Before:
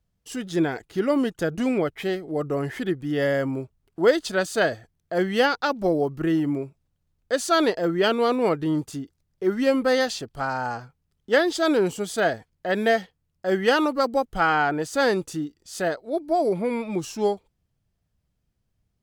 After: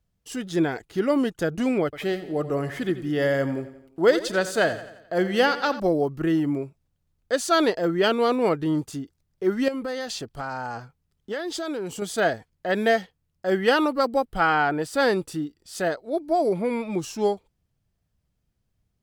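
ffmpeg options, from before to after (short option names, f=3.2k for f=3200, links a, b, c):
-filter_complex "[0:a]asettb=1/sr,asplit=3[a][b][c];[a]atrim=end=1.844[d];[b]atrim=start=1.84:end=5.8,asetpts=PTS-STARTPTS,afade=t=in:d=0.004:c=qsin,afade=t=out:st=3.956:d=0.004:c=qsin,aecho=1:1:87|174|261|348|435:0.211|0.108|0.055|0.028|0.0143,atrim=end_sample=174636[e];[c]atrim=start=5.796[f];[d][e]acrossfade=d=0.004:c1=hsin:c2=qsin[g];[g][f]acrossfade=d=0.004:c1=qsin:c2=hsin,asettb=1/sr,asplit=3[h][i][j];[h]atrim=end=9.684[k];[i]atrim=start=9.68:end=12.02,asetpts=PTS-STARTPTS,afade=t=in:d=0.004:c=qsin,afade=t=out:st=2.336:d=0.004:c=qsin,acompressor=threshold=-27dB:ratio=5:attack=3.2:release=140:knee=1:detection=peak[l];[j]atrim=start=12.016[m];[k][l]acrossfade=d=0.004:c1=hsin:c2=qsin[n];[n][m]acrossfade=d=0.004:c1=qsin:c2=hsin,asettb=1/sr,asplit=3[o][p][q];[o]atrim=end=13.504[r];[p]atrim=start=13.5:end=15.76,asetpts=PTS-STARTPTS,afade=t=in:d=0.004:c=qsin,afade=t=out:st=2.256:d=0.004:c=qsin,equalizer=f=6.5k:w=5.8:g=-9[s];[q]atrim=start=15.756[t];[r][s]acrossfade=d=0.004:c1=hsin:c2=qsin[u];[u][t]acrossfade=d=0.004:c1=qsin:c2=hsin"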